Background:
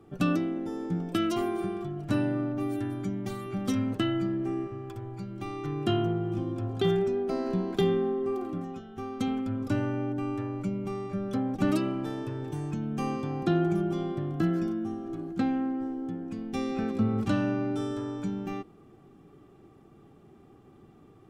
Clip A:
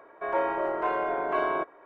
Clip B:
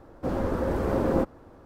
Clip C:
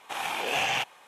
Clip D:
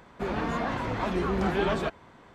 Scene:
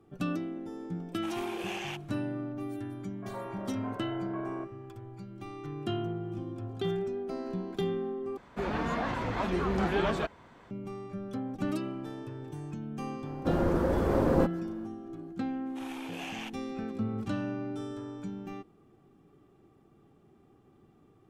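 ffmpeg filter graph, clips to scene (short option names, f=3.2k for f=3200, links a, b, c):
-filter_complex "[3:a]asplit=2[a][b];[0:a]volume=-6.5dB[c];[1:a]lowpass=1.9k[d];[c]asplit=2[e][f];[e]atrim=end=8.374[g];[4:a]atrim=end=2.34,asetpts=PTS-STARTPTS,volume=-2dB[h];[f]atrim=start=10.706[i];[a]atrim=end=1.07,asetpts=PTS-STARTPTS,volume=-12dB,afade=t=in:d=0.004:c=hsin,afade=t=out:st=1.066:d=0.004:c=hsin,adelay=1130[j];[d]atrim=end=1.85,asetpts=PTS-STARTPTS,volume=-14.5dB,afade=t=in:d=0.004:c=hsin,afade=t=out:st=1.846:d=0.004:c=hsin,adelay=3010[k];[2:a]atrim=end=1.65,asetpts=PTS-STARTPTS,volume=-1dB,afade=t=in:d=0.004:c=hsin,afade=t=out:st=1.646:d=0.004:c=hsin,adelay=13220[l];[b]atrim=end=1.07,asetpts=PTS-STARTPTS,volume=-14dB,afade=t=in:d=0.004:c=hsin,afade=t=out:st=1.066:d=0.004:c=hsin,adelay=15660[m];[g][h]acrossfade=d=0.004:c1=hsin:c2=hsin[n];[n][i]acrossfade=d=0.004:c1=hsin:c2=hsin[o];[o][j][k][l][m]amix=inputs=5:normalize=0"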